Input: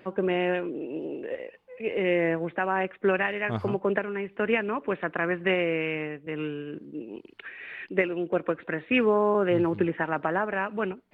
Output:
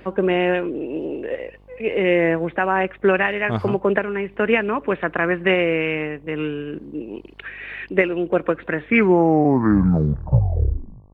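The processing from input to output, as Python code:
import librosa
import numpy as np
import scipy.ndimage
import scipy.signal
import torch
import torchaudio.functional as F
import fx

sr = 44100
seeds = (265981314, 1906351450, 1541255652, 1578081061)

y = fx.tape_stop_end(x, sr, length_s=2.39)
y = fx.dmg_buzz(y, sr, base_hz=50.0, harmonics=23, level_db=-58.0, tilt_db=-6, odd_only=False)
y = F.gain(torch.from_numpy(y), 7.0).numpy()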